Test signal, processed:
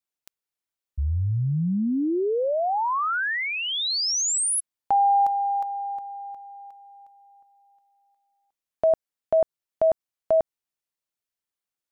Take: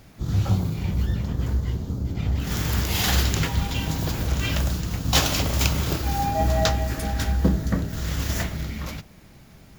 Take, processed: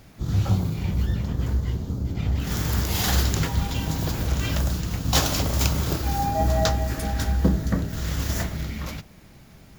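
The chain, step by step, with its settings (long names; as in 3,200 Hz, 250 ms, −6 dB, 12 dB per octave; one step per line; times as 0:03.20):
dynamic equaliser 2,600 Hz, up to −5 dB, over −39 dBFS, Q 1.3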